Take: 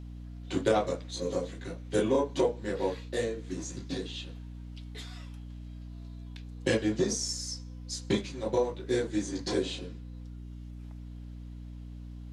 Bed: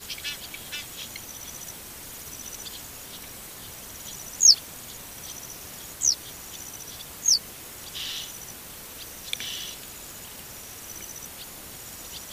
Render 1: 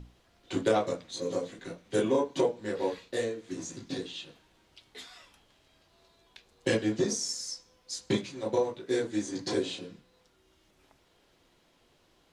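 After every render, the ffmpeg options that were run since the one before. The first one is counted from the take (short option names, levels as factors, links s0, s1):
-af "bandreject=f=60:t=h:w=6,bandreject=f=120:t=h:w=6,bandreject=f=180:t=h:w=6,bandreject=f=240:t=h:w=6,bandreject=f=300:t=h:w=6"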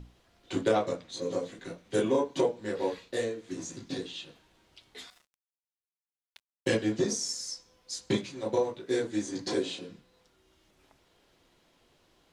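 -filter_complex "[0:a]asettb=1/sr,asplit=3[s0][s1][s2];[s0]atrim=end=0.644[s3];[s1]atrim=start=0.64:end=1.42,asetpts=PTS-STARTPTS,afade=t=in:d=0.004:c=qsin,afade=t=out:st=0.776:d=0.004:c=qsin,highshelf=f=7700:g=-5[s4];[s2]atrim=start=1.416[s5];[s3][s4]acrossfade=d=0.004:c1=hsin:c2=qsin[s6];[s6][s5]acrossfade=d=0.004:c1=qsin:c2=hsin,asettb=1/sr,asplit=3[s7][s8][s9];[s7]atrim=end=5.104[s10];[s8]atrim=start=5.1:end=6.69,asetpts=PTS-STARTPTS,afade=t=in:d=0.004:c=qsin,afade=t=out:st=1.586:d=0.004:c=qsin,aeval=exprs='sgn(val(0))*max(abs(val(0))-0.00316,0)':c=same[s11];[s9]atrim=start=6.686[s12];[s10][s11]acrossfade=d=0.004:c1=hsin:c2=qsin[s13];[s13][s12]acrossfade=d=0.004:c1=qsin:c2=hsin,asettb=1/sr,asplit=3[s14][s15][s16];[s14]atrim=end=9.474[s17];[s15]atrim=start=9.47:end=9.89,asetpts=PTS-STARTPTS,afade=t=in:d=0.004:c=qsin,afade=t=out:st=0.416:d=0.004:c=qsin,highpass=130[s18];[s16]atrim=start=9.886[s19];[s17][s18]acrossfade=d=0.004:c1=hsin:c2=qsin[s20];[s20][s19]acrossfade=d=0.004:c1=qsin:c2=hsin"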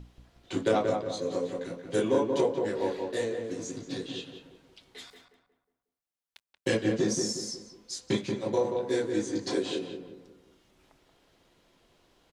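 -filter_complex "[0:a]asplit=2[s0][s1];[s1]adelay=181,lowpass=f=1500:p=1,volume=0.631,asplit=2[s2][s3];[s3]adelay=181,lowpass=f=1500:p=1,volume=0.42,asplit=2[s4][s5];[s5]adelay=181,lowpass=f=1500:p=1,volume=0.42,asplit=2[s6][s7];[s7]adelay=181,lowpass=f=1500:p=1,volume=0.42,asplit=2[s8][s9];[s9]adelay=181,lowpass=f=1500:p=1,volume=0.42[s10];[s0][s2][s4][s6][s8][s10]amix=inputs=6:normalize=0"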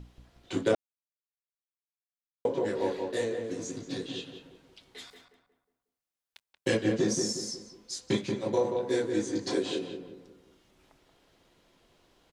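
-filter_complex "[0:a]asplit=3[s0][s1][s2];[s0]atrim=end=0.75,asetpts=PTS-STARTPTS,afade=t=out:st=0.746:d=0.004:c=hsin[s3];[s1]atrim=start=0.75:end=2.45,asetpts=PTS-STARTPTS,volume=0[s4];[s2]atrim=start=2.45,asetpts=PTS-STARTPTS,afade=t=in:d=0.004:c=hsin[s5];[s3][s4][s5]concat=n=3:v=0:a=1"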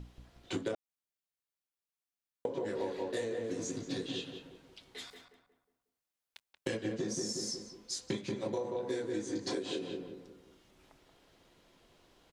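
-af "acompressor=threshold=0.0251:ratio=12"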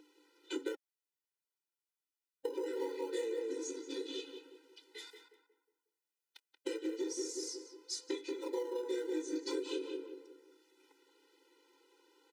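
-filter_complex "[0:a]acrossover=split=650|810[s0][s1][s2];[s1]acrusher=samples=22:mix=1:aa=0.000001:lfo=1:lforange=35.2:lforate=0.48[s3];[s0][s3][s2]amix=inputs=3:normalize=0,afftfilt=real='re*eq(mod(floor(b*sr/1024/260),2),1)':imag='im*eq(mod(floor(b*sr/1024/260),2),1)':win_size=1024:overlap=0.75"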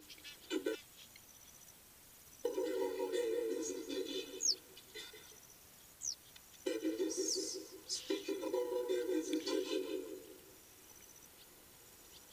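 -filter_complex "[1:a]volume=0.106[s0];[0:a][s0]amix=inputs=2:normalize=0"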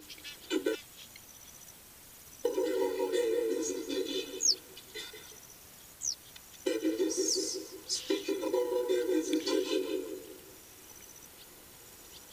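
-af "volume=2.24"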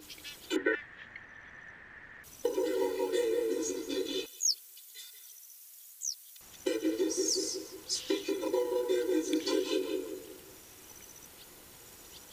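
-filter_complex "[0:a]asettb=1/sr,asplit=3[s0][s1][s2];[s0]atrim=end=0.564[s3];[s1]atrim=start=0.56:end=2.24,asetpts=PTS-STARTPTS,afade=t=in:d=0.004:c=qsin,afade=t=out:st=1.676:d=0.004:c=qsin,lowpass=f=1800:t=q:w=13[s4];[s2]atrim=start=2.236[s5];[s3][s4]acrossfade=d=0.004:c1=hsin:c2=qsin[s6];[s6][s5]acrossfade=d=0.004:c1=qsin:c2=hsin,asettb=1/sr,asplit=3[s7][s8][s9];[s7]atrim=end=4.264[s10];[s8]atrim=start=4.26:end=6.41,asetpts=PTS-STARTPTS,afade=t=in:d=0.004:c=qsin,afade=t=out:st=2.146:d=0.004:c=qsin,aderivative[s11];[s9]atrim=start=6.406[s12];[s10][s11]acrossfade=d=0.004:c1=hsin:c2=qsin[s13];[s13][s12]acrossfade=d=0.004:c1=qsin:c2=hsin"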